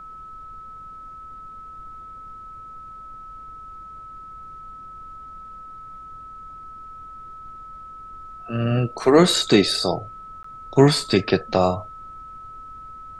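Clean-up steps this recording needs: notch 1300 Hz, Q 30; interpolate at 10.43, 14 ms; noise print and reduce 29 dB

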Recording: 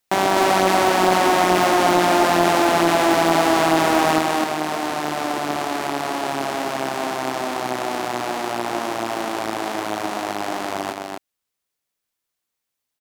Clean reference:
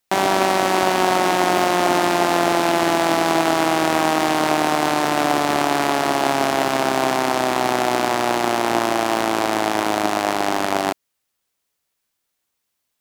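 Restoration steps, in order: clip repair -7 dBFS; inverse comb 0.253 s -3.5 dB; gain correction +7 dB, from 4.19

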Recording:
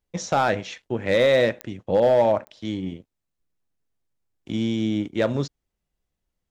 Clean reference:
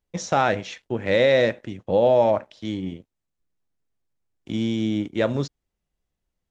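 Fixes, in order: clip repair -11.5 dBFS; de-click; interpolate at 2.45, 17 ms

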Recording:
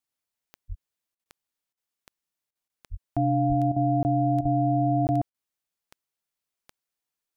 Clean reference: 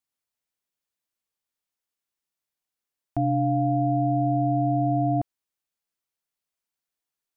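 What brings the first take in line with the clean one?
de-click; de-plosive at 0.68/2.9/3.48/4.41; interpolate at 1.24/2.68/4.03/5.07, 19 ms; interpolate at 1.15/1.73/2.51/3.72/4.41/5.3, 42 ms

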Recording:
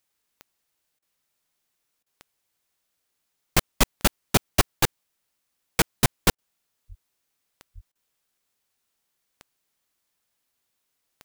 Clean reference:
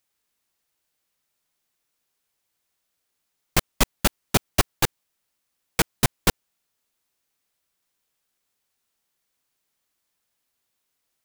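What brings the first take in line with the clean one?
de-click; 6.88–7 HPF 140 Hz 24 dB/oct; 7.74–7.86 HPF 140 Hz 24 dB/oct; interpolate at 0.99/2.03/6.35/7.92, 32 ms

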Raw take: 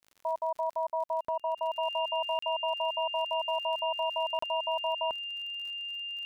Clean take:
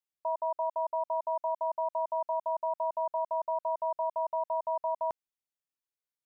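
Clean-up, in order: de-click; notch 2800 Hz, Q 30; interpolate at 1.25/2.39/4.39, 34 ms

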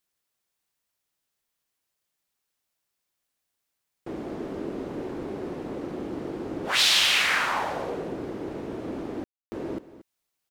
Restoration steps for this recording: room tone fill 9.24–9.52; inverse comb 0.231 s -15.5 dB

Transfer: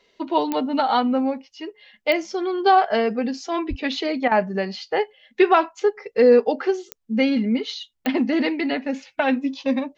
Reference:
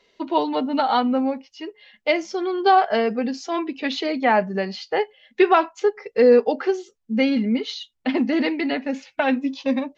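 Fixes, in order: de-click; 3.69–3.81 HPF 140 Hz 24 dB/oct; interpolate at 4.28, 33 ms

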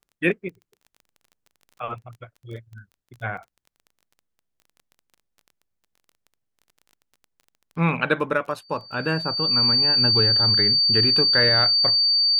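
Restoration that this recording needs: de-click; notch 4600 Hz, Q 30

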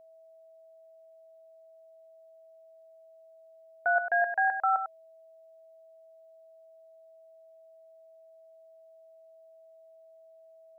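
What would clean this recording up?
notch 650 Hz, Q 30; inverse comb 99 ms -8.5 dB

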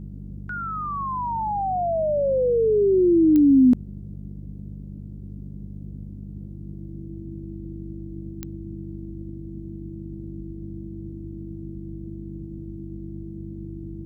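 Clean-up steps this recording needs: de-click; de-hum 49.6 Hz, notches 4; notch 330 Hz, Q 30; noise print and reduce 30 dB

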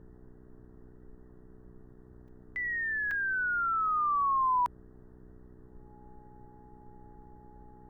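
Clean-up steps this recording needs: de-hum 61.9 Hz, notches 7; notch 840 Hz, Q 30; interpolate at 2.28/3.11, 3.8 ms; noise print and reduce 23 dB

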